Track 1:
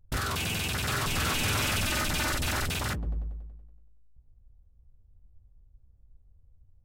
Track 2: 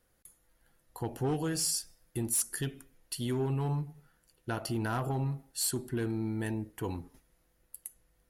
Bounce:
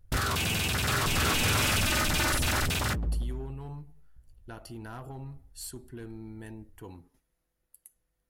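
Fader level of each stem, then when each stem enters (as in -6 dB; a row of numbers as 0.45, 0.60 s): +2.0, -9.5 dB; 0.00, 0.00 s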